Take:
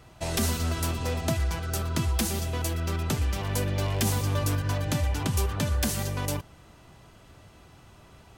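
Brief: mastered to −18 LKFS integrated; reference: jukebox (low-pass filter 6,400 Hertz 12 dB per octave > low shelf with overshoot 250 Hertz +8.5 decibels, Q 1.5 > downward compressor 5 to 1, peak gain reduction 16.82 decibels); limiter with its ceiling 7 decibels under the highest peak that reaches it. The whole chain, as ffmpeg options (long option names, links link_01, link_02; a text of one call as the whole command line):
ffmpeg -i in.wav -af "alimiter=limit=-19.5dB:level=0:latency=1,lowpass=6400,lowshelf=frequency=250:width_type=q:width=1.5:gain=8.5,acompressor=threshold=-34dB:ratio=5,volume=19dB" out.wav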